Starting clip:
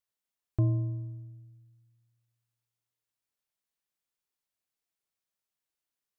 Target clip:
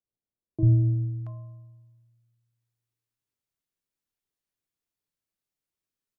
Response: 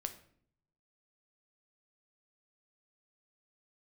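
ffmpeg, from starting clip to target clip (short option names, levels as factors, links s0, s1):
-filter_complex "[0:a]equalizer=f=210:w=0.45:g=7,acrossover=split=180|740[s0][s1][s2];[s0]adelay=40[s3];[s2]adelay=680[s4];[s3][s1][s4]amix=inputs=3:normalize=0,asplit=2[s5][s6];[1:a]atrim=start_sample=2205,lowshelf=f=230:g=10.5[s7];[s6][s7]afir=irnorm=-1:irlink=0,volume=1[s8];[s5][s8]amix=inputs=2:normalize=0,volume=0.422"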